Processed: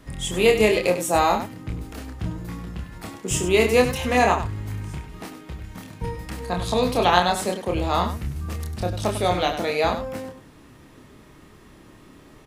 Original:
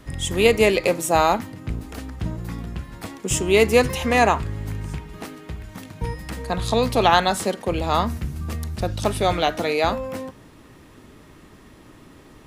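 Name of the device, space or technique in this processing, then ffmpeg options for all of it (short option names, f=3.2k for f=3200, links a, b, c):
slapback doubling: -filter_complex "[0:a]asplit=3[a][b][c];[b]adelay=28,volume=-4dB[d];[c]adelay=99,volume=-10dB[e];[a][d][e]amix=inputs=3:normalize=0,volume=-3dB"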